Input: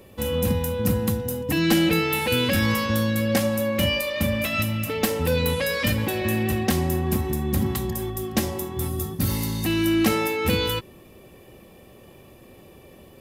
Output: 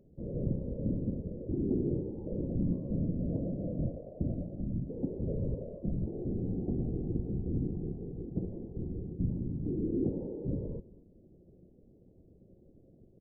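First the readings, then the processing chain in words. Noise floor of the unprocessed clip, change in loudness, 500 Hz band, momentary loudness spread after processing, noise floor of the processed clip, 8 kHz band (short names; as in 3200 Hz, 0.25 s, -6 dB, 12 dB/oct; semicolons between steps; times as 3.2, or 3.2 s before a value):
-49 dBFS, -12.0 dB, -14.0 dB, 6 LU, -61 dBFS, under -40 dB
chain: whisperiser; Gaussian blur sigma 20 samples; resonator 180 Hz, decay 0.41 s, harmonics all, mix 50%; echo 0.227 s -21.5 dB; gain -2 dB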